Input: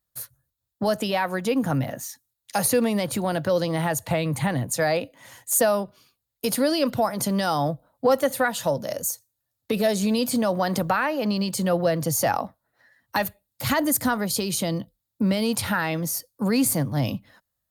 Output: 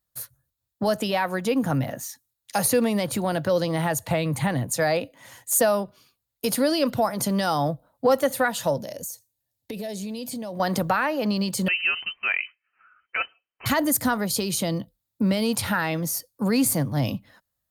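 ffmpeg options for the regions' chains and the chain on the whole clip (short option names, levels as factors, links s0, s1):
-filter_complex "[0:a]asettb=1/sr,asplit=3[s0][s1][s2];[s0]atrim=end=8.814[s3];[s1]atrim=start=8.81:end=10.6,asetpts=PTS-STARTPTS,afade=t=in:d=0.004:c=qsin,afade=t=out:st=1.786:d=0.004:c=qsin,equalizer=f=1300:w=2.8:g=-12,acompressor=threshold=0.0282:ratio=4:attack=3.2:release=140:knee=1:detection=peak[s4];[s2]atrim=start=10.596[s5];[s3][s4]acrossfade=d=0.004:c1=hsin:c2=qsin[s6];[s6][s5]acrossfade=d=0.004:c1=qsin:c2=hsin,asettb=1/sr,asplit=3[s7][s8][s9];[s7]atrim=end=11.684[s10];[s8]atrim=start=11.68:end=13.66,asetpts=PTS-STARTPTS,afade=t=in:d=0.004:c=qsin,afade=t=out:st=1.976:d=0.004:c=qsin,aemphasis=mode=production:type=riaa,acompressor=threshold=0.158:ratio=12:attack=3.2:release=140:knee=1:detection=peak,lowpass=f=2700:t=q:w=0.5098,lowpass=f=2700:t=q:w=0.6013,lowpass=f=2700:t=q:w=0.9,lowpass=f=2700:t=q:w=2.563,afreqshift=-3200[s11];[s9]atrim=start=13.656[s12];[s10][s11]acrossfade=d=0.004:c1=hsin:c2=qsin[s13];[s13][s12]acrossfade=d=0.004:c1=qsin:c2=hsin"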